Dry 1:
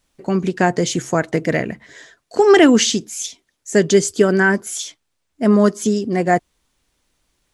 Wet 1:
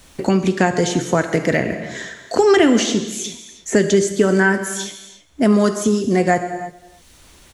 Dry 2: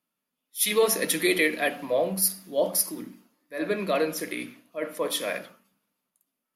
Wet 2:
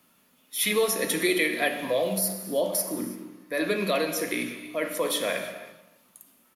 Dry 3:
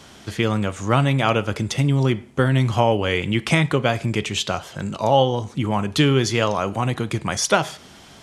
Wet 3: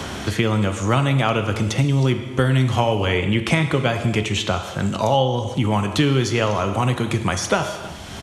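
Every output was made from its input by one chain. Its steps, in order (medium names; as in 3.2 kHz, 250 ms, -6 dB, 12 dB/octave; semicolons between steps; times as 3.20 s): peaking EQ 77 Hz +8.5 dB 0.68 oct; band-stop 4.9 kHz, Q 22; echo from a far wall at 54 m, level -27 dB; gated-style reverb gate 360 ms falling, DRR 7.5 dB; three bands compressed up and down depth 70%; trim -1 dB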